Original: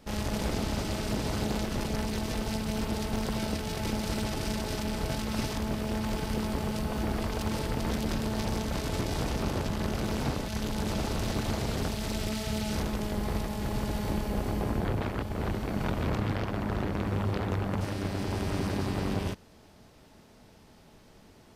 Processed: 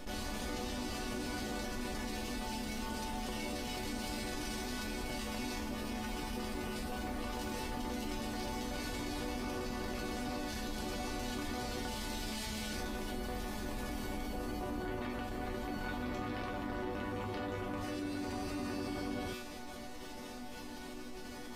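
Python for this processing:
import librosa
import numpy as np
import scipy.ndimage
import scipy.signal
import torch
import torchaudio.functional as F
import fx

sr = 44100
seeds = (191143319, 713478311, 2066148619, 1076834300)

y = fx.resonator_bank(x, sr, root=59, chord='minor', decay_s=0.34)
y = fx.env_flatten(y, sr, amount_pct=70)
y = y * librosa.db_to_amplitude(10.0)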